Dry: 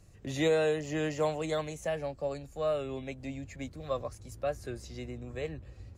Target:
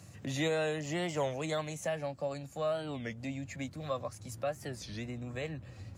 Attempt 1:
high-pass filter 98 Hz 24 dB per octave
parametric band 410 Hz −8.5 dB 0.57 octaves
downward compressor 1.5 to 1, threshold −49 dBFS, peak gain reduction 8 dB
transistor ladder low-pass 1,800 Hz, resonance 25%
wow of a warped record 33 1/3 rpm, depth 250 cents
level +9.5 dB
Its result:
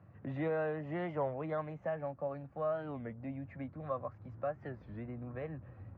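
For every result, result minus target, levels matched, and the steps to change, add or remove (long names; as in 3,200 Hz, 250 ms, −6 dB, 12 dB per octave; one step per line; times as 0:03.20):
2,000 Hz band −4.0 dB; downward compressor: peak gain reduction −3 dB
remove: transistor ladder low-pass 1,800 Hz, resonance 25%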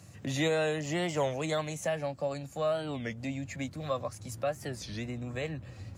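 downward compressor: peak gain reduction −3 dB
change: downward compressor 1.5 to 1, threshold −58 dBFS, peak gain reduction 11 dB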